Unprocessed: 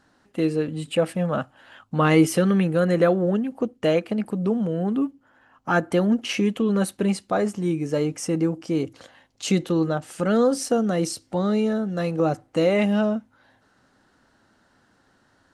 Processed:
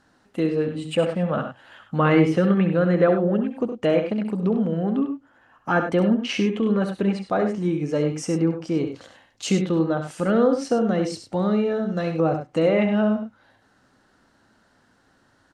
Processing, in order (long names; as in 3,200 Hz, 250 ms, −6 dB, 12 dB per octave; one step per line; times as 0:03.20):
treble cut that deepens with the level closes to 2,700 Hz, closed at −17.5 dBFS
loudspeakers that aren't time-aligned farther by 23 metres −9 dB, 34 metres −10 dB